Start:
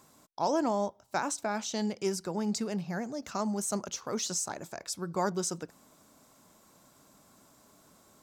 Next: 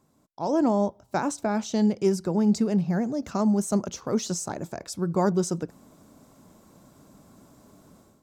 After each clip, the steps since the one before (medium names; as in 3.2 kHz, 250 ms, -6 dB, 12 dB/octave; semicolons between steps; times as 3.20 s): tilt shelf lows +6.5 dB, about 630 Hz; level rider gain up to 12.5 dB; trim -6.5 dB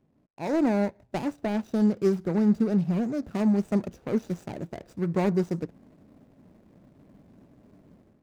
median filter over 41 samples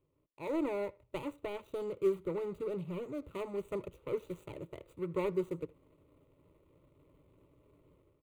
static phaser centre 1.1 kHz, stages 8; speakerphone echo 80 ms, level -24 dB; trim -4.5 dB